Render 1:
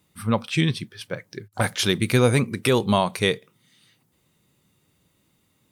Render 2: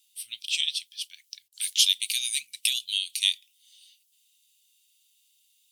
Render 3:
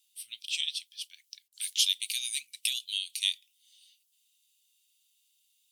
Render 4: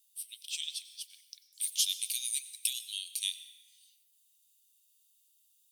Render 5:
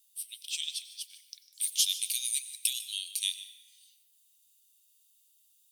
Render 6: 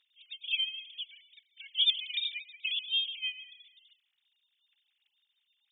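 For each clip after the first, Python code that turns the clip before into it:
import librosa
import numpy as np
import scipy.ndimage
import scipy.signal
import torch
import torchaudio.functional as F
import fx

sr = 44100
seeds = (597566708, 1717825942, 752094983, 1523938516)

y1 = scipy.signal.sosfilt(scipy.signal.ellip(4, 1.0, 60, 2900.0, 'highpass', fs=sr, output='sos'), x)
y1 = F.gain(torch.from_numpy(y1), 5.5).numpy()
y2 = fx.low_shelf(y1, sr, hz=120.0, db=-9.5)
y2 = F.gain(torch.from_numpy(y2), -5.0).numpy()
y3 = np.diff(y2, prepend=0.0)
y3 = fx.rev_plate(y3, sr, seeds[0], rt60_s=2.2, hf_ratio=0.4, predelay_ms=80, drr_db=11.0)
y4 = y3 + 10.0 ** (-18.0 / 20.0) * np.pad(y3, (int(150 * sr / 1000.0), 0))[:len(y3)]
y4 = F.gain(torch.from_numpy(y4), 2.5).numpy()
y5 = fx.sine_speech(y4, sr)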